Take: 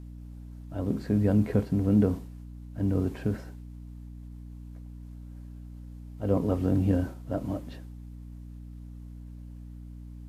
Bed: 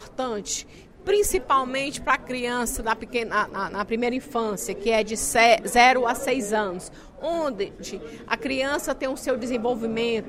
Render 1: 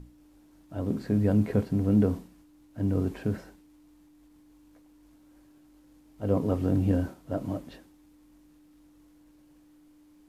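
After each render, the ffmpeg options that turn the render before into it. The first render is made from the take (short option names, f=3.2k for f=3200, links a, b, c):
-af "bandreject=f=60:t=h:w=6,bandreject=f=120:t=h:w=6,bandreject=f=180:t=h:w=6,bandreject=f=240:t=h:w=6"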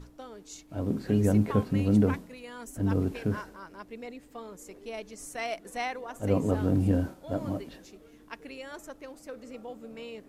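-filter_complex "[1:a]volume=-17.5dB[a];[0:a][a]amix=inputs=2:normalize=0"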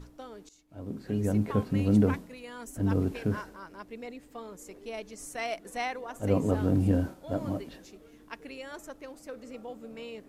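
-filter_complex "[0:a]asplit=2[a][b];[a]atrim=end=0.49,asetpts=PTS-STARTPTS,afade=t=out:st=0.486:d=0.004:c=hsin:silence=0.133352[c];[b]atrim=start=0.49,asetpts=PTS-STARTPTS,afade=t=in:d=1.41:silence=0.133352[d];[c][d]concat=n=2:v=0:a=1"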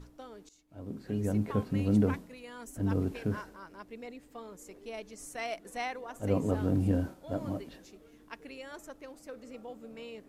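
-af "volume=-3dB"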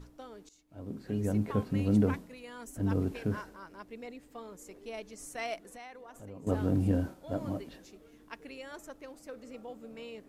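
-filter_complex "[0:a]asettb=1/sr,asplit=3[a][b][c];[a]atrim=end=5.574[d];[b]atrim=start=5.57:end=6.47,asetpts=PTS-STARTPTS,afade=t=in:d=0.004:c=qsin,afade=t=out:st=0.896:d=0.004:c=qsin,acompressor=threshold=-48dB:ratio=3:attack=3.2:release=140:knee=1:detection=peak[e];[c]atrim=start=6.466[f];[d][e]acrossfade=d=0.004:c1=hsin:c2=qsin[g];[g][f]acrossfade=d=0.004:c1=qsin:c2=hsin"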